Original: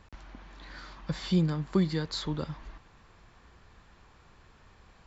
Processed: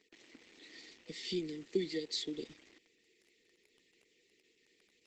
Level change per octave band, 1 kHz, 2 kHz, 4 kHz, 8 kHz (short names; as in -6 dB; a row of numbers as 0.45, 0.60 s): under -20 dB, -7.0 dB, -2.5 dB, n/a